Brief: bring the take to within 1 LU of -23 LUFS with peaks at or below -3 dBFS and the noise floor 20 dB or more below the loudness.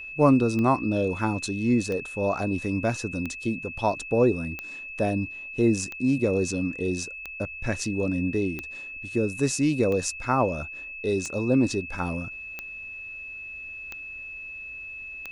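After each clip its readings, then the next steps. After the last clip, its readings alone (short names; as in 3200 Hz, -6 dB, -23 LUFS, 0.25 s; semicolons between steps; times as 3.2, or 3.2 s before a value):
clicks 12; steady tone 2600 Hz; tone level -36 dBFS; loudness -27.0 LUFS; peak -7.0 dBFS; loudness target -23.0 LUFS
-> de-click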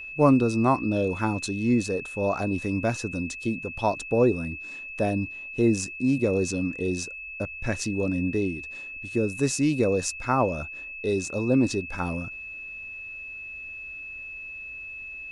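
clicks 0; steady tone 2600 Hz; tone level -36 dBFS
-> notch 2600 Hz, Q 30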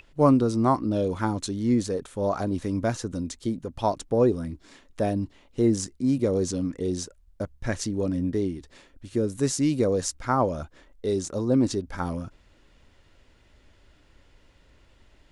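steady tone none; loudness -26.5 LUFS; peak -7.0 dBFS; loudness target -23.0 LUFS
-> gain +3.5 dB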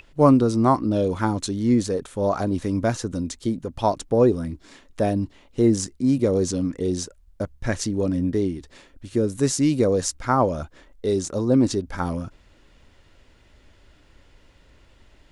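loudness -23.0 LUFS; peak -3.5 dBFS; noise floor -56 dBFS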